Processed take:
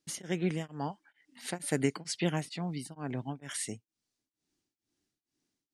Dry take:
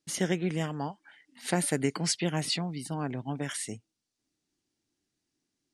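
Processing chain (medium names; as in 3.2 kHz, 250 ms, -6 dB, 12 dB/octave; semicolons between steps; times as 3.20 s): tremolo of two beating tones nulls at 2.2 Hz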